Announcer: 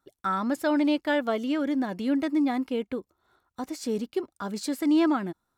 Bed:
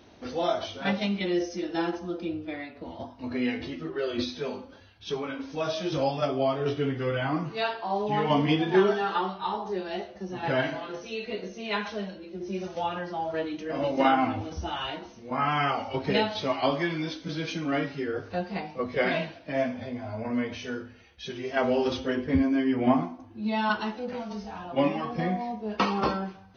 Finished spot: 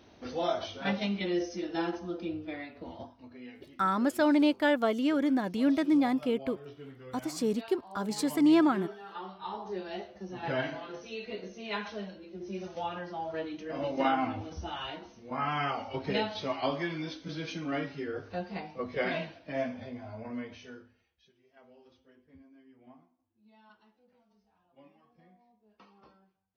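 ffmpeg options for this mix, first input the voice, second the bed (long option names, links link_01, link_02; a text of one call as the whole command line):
ffmpeg -i stem1.wav -i stem2.wav -filter_complex "[0:a]adelay=3550,volume=-0.5dB[link_01];[1:a]volume=10dB,afade=type=out:start_time=2.91:duration=0.39:silence=0.16788,afade=type=in:start_time=9.04:duration=0.7:silence=0.211349,afade=type=out:start_time=19.73:duration=1.59:silence=0.0398107[link_02];[link_01][link_02]amix=inputs=2:normalize=0" out.wav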